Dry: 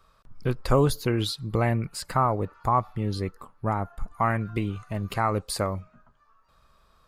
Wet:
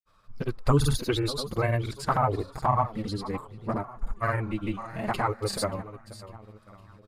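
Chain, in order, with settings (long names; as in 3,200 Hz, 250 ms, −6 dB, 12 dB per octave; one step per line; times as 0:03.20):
repeating echo 572 ms, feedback 43%, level −15 dB
flanger swept by the level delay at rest 10.3 ms, full sweep at −12.5 dBFS
granular cloud, pitch spread up and down by 0 semitones
level +3 dB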